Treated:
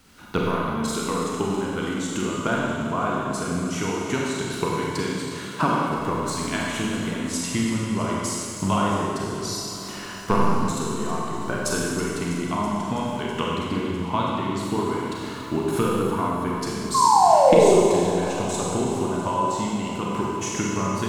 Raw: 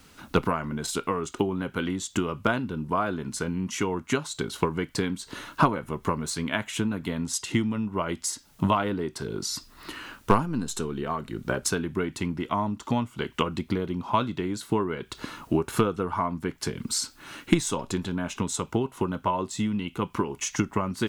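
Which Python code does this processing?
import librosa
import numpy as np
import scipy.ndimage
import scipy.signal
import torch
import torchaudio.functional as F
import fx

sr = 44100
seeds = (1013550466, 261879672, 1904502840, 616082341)

p1 = fx.highpass(x, sr, hz=120.0, slope=24, at=(4.98, 5.87))
p2 = fx.spec_paint(p1, sr, seeds[0], shape='fall', start_s=16.94, length_s=0.85, low_hz=340.0, high_hz=1100.0, level_db=-17.0)
p3 = p2 + fx.echo_alternate(p2, sr, ms=163, hz=870.0, feedback_pct=88, wet_db=-14.0, dry=0)
p4 = fx.rev_schroeder(p3, sr, rt60_s=2.0, comb_ms=31, drr_db=-3.5)
y = p4 * 10.0 ** (-2.5 / 20.0)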